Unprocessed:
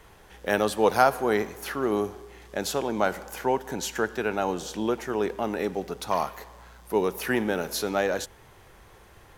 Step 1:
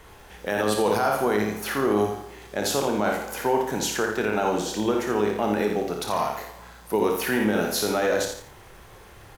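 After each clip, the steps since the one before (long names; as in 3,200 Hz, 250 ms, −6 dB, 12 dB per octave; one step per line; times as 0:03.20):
ambience of single reflections 29 ms −9 dB, 57 ms −6.5 dB
brickwall limiter −17 dBFS, peak gain reduction 11.5 dB
feedback echo at a low word length 85 ms, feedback 35%, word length 9 bits, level −7.5 dB
level +3.5 dB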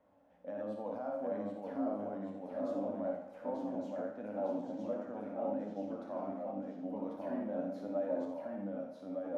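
delay with pitch and tempo change per echo 735 ms, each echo −1 semitone, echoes 2
flanger 1.4 Hz, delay 9.7 ms, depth 1.8 ms, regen +45%
pair of resonant band-passes 390 Hz, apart 1.1 octaves
level −3 dB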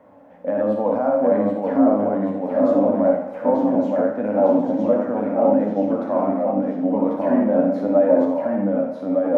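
octave-band graphic EQ 125/250/500/1,000/2,000 Hz +10/+8/+8/+8/+8 dB
level +9 dB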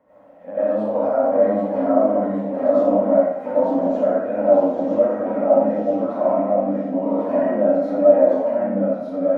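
convolution reverb RT60 0.40 s, pre-delay 55 ms, DRR −10.5 dB
level −11 dB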